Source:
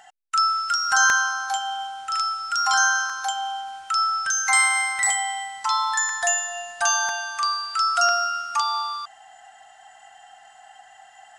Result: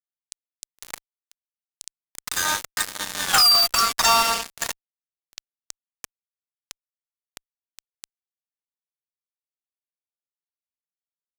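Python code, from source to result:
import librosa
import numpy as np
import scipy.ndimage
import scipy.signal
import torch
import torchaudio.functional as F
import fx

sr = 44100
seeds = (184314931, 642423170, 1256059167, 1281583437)

y = fx.doppler_pass(x, sr, speed_mps=50, closest_m=4.7, pass_at_s=3.36)
y = fx.spec_gate(y, sr, threshold_db=-10, keep='weak')
y = fx.fuzz(y, sr, gain_db=55.0, gate_db=-47.0)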